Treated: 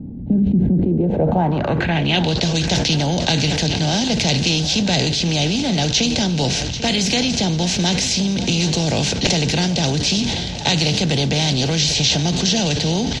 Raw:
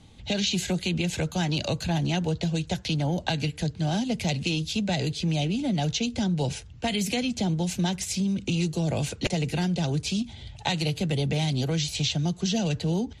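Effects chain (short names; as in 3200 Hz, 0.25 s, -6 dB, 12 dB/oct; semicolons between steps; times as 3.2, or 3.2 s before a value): per-bin compression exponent 0.6; low-pass sweep 250 Hz -> 5500 Hz, 0.73–2.44; on a send: feedback echo 0.791 s, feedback 52%, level -14.5 dB; on the sum: sustainer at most 25 dB/s; gain +3.5 dB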